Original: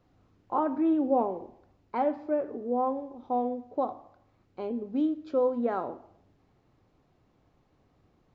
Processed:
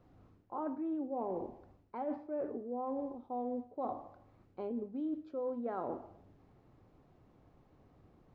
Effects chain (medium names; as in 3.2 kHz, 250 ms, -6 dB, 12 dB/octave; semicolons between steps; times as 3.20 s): treble shelf 2.1 kHz -9.5 dB; reverse; compression 10:1, threshold -38 dBFS, peak gain reduction 17.5 dB; reverse; trim +3 dB